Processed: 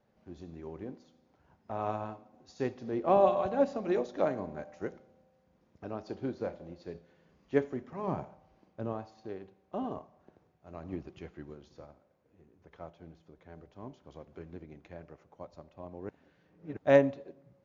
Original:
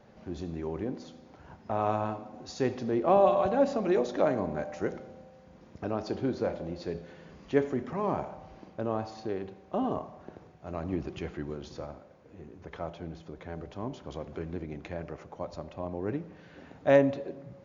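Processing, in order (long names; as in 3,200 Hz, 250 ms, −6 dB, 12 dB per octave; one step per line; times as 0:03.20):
0:08.07–0:08.93: dynamic equaliser 140 Hz, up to +7 dB, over −48 dBFS, Q 1
0:16.09–0:16.77: reverse
expander for the loud parts 1.5 to 1, over −47 dBFS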